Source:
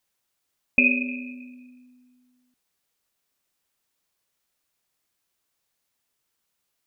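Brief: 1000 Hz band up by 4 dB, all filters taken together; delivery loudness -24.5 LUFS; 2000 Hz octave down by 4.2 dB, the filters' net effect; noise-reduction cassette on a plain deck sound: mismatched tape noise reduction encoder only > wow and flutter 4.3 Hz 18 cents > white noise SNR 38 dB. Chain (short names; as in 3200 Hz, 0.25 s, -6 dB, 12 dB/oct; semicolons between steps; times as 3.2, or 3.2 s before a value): bell 1000 Hz +7 dB; bell 2000 Hz -7 dB; mismatched tape noise reduction encoder only; wow and flutter 4.3 Hz 18 cents; white noise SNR 38 dB; gain +2 dB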